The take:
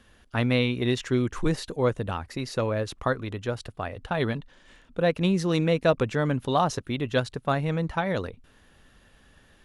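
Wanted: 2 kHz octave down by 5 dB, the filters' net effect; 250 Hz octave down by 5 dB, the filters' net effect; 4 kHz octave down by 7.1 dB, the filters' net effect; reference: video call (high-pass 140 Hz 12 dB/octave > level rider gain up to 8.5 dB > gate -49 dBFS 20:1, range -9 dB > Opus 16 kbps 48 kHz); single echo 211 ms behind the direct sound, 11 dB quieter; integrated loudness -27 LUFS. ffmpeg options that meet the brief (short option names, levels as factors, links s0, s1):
-af "highpass=140,equalizer=f=250:t=o:g=-6,equalizer=f=2000:t=o:g=-5,equalizer=f=4000:t=o:g=-7,aecho=1:1:211:0.282,dynaudnorm=m=2.66,agate=range=0.355:threshold=0.00355:ratio=20,volume=1.5" -ar 48000 -c:a libopus -b:a 16k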